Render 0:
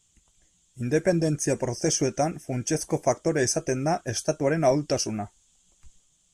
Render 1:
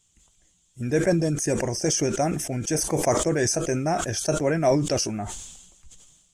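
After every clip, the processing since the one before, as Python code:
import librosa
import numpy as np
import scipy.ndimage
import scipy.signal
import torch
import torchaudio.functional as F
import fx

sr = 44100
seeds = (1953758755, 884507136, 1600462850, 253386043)

y = fx.sustainer(x, sr, db_per_s=49.0)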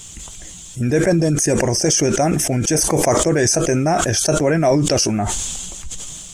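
y = fx.env_flatten(x, sr, amount_pct=50)
y = y * librosa.db_to_amplitude(4.0)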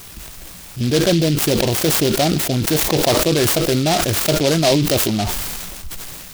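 y = fx.noise_mod_delay(x, sr, seeds[0], noise_hz=3700.0, depth_ms=0.12)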